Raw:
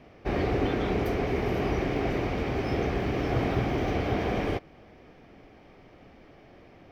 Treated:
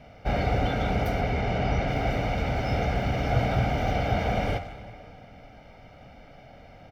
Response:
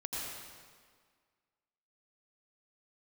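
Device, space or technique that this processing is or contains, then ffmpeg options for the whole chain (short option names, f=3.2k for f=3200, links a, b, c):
saturated reverb return: -filter_complex "[0:a]asettb=1/sr,asplit=3[a][b][c];[a]atrim=end=1.214[d];[b]atrim=start=1.21:end=1.88,asetpts=PTS-STARTPTS,afade=t=in:d=0.004:c=qsin,afade=t=out:st=0.666:d=0.004:c=qsin,lowpass=5.8k[e];[c]atrim=start=1.876[f];[d][e]acrossfade=d=0.004:c1=hsin:c2=qsin[g];[g][f]acrossfade=d=0.004:c1=qsin:c2=hsin,bandreject=f=87.03:t=h:w=4,bandreject=f=174.06:t=h:w=4,bandreject=f=261.09:t=h:w=4,bandreject=f=348.12:t=h:w=4,bandreject=f=435.15:t=h:w=4,bandreject=f=522.18:t=h:w=4,bandreject=f=609.21:t=h:w=4,bandreject=f=696.24:t=h:w=4,bandreject=f=783.27:t=h:w=4,bandreject=f=870.3:t=h:w=4,bandreject=f=957.33:t=h:w=4,bandreject=f=1.04436k:t=h:w=4,bandreject=f=1.13139k:t=h:w=4,bandreject=f=1.21842k:t=h:w=4,bandreject=f=1.30545k:t=h:w=4,bandreject=f=1.39248k:t=h:w=4,bandreject=f=1.47951k:t=h:w=4,bandreject=f=1.56654k:t=h:w=4,bandreject=f=1.65357k:t=h:w=4,bandreject=f=1.7406k:t=h:w=4,bandreject=f=1.82763k:t=h:w=4,bandreject=f=1.91466k:t=h:w=4,bandreject=f=2.00169k:t=h:w=4,bandreject=f=2.08872k:t=h:w=4,bandreject=f=2.17575k:t=h:w=4,bandreject=f=2.26278k:t=h:w=4,bandreject=f=2.34981k:t=h:w=4,bandreject=f=2.43684k:t=h:w=4,bandreject=f=2.52387k:t=h:w=4,bandreject=f=2.6109k:t=h:w=4,bandreject=f=2.69793k:t=h:w=4,bandreject=f=2.78496k:t=h:w=4,bandreject=f=2.87199k:t=h:w=4,asplit=2[h][i];[1:a]atrim=start_sample=2205[j];[i][j]afir=irnorm=-1:irlink=0,asoftclip=type=tanh:threshold=-31dB,volume=-8.5dB[k];[h][k]amix=inputs=2:normalize=0,aecho=1:1:1.4:0.74"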